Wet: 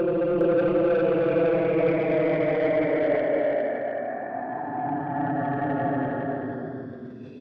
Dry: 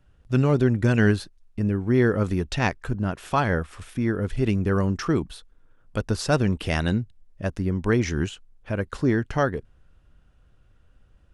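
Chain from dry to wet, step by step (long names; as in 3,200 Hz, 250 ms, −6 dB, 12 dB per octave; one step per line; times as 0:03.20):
gliding playback speed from 119% → 187%
low-pass filter 4,600 Hz 12 dB per octave
reverb reduction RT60 0.67 s
high-pass filter 270 Hz 12 dB per octave
treble cut that deepens with the level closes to 1,300 Hz, closed at −20.5 dBFS
extreme stretch with random phases 29×, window 0.05 s, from 0:01.55
soft clipping −18.5 dBFS, distortion −13 dB
on a send: single-tap delay 409 ms −4.5 dB
on the sum: level that may fall only so fast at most 47 dB per second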